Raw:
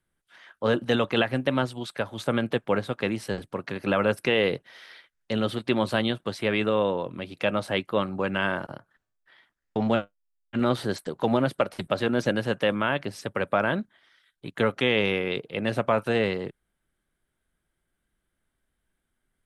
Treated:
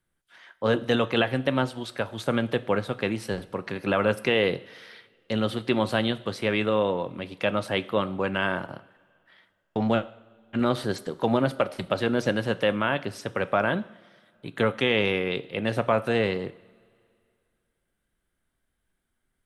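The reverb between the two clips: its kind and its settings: two-slope reverb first 0.58 s, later 2.4 s, from -17 dB, DRR 13.5 dB

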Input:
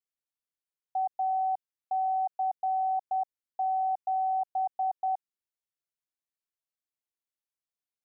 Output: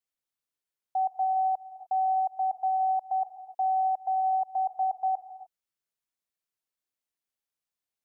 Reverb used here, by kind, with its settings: non-linear reverb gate 0.32 s rising, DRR 10.5 dB; gain +2 dB

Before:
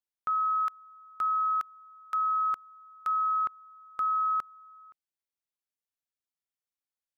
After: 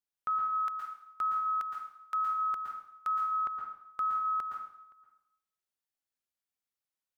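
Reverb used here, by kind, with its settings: plate-style reverb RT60 0.72 s, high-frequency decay 0.95×, pre-delay 0.105 s, DRR 1 dB; gain -2.5 dB

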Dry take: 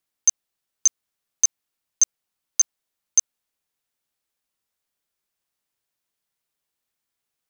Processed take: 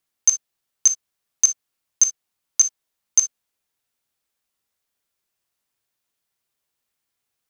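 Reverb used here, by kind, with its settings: non-linear reverb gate 80 ms flat, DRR 8 dB; gain +2 dB

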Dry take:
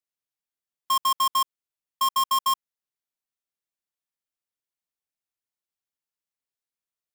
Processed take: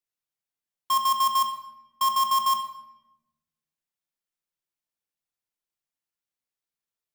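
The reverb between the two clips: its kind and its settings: shoebox room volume 380 m³, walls mixed, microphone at 0.8 m; gain -1.5 dB

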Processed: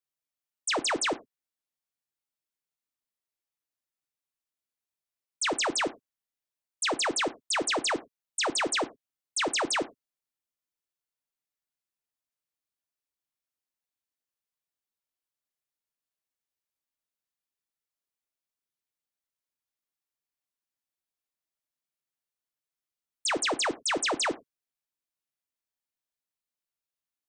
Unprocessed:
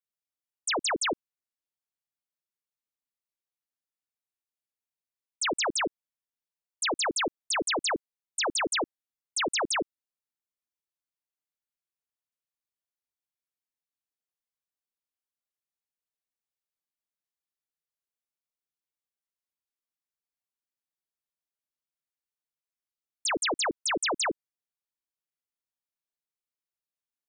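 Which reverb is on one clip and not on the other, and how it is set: non-linear reverb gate 0.13 s falling, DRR 12 dB

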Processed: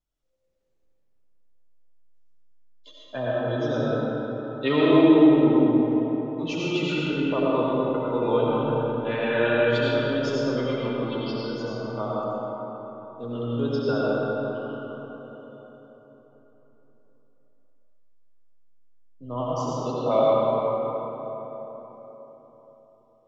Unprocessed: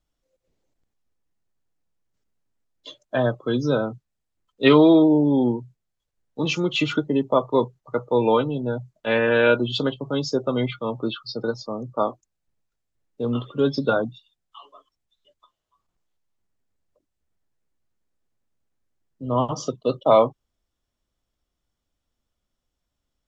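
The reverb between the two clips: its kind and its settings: digital reverb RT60 4.2 s, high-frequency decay 0.5×, pre-delay 45 ms, DRR -7 dB; gain -10 dB

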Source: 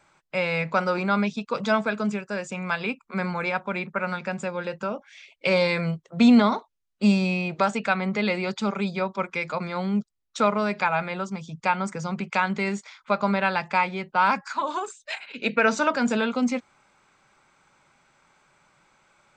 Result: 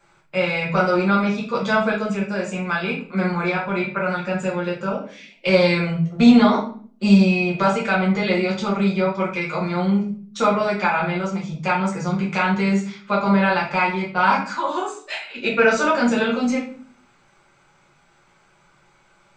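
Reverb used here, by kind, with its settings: shoebox room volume 45 m³, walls mixed, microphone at 1.2 m; gain -2.5 dB

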